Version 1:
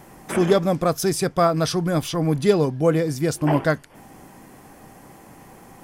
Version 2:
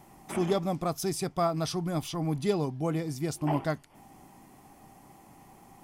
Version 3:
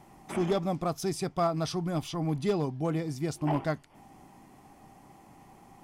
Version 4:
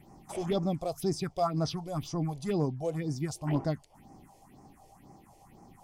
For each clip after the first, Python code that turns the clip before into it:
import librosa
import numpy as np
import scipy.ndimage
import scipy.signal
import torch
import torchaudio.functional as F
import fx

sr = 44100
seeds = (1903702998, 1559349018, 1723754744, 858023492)

y1 = fx.graphic_eq_31(x, sr, hz=(500, 800, 1600), db=(-8, 4, -8))
y1 = y1 * librosa.db_to_amplitude(-8.5)
y2 = fx.high_shelf(y1, sr, hz=9600.0, db=-10.0)
y2 = np.clip(y2, -10.0 ** (-20.0 / 20.0), 10.0 ** (-20.0 / 20.0))
y3 = fx.phaser_stages(y2, sr, stages=4, low_hz=210.0, high_hz=3100.0, hz=2.0, feedback_pct=40)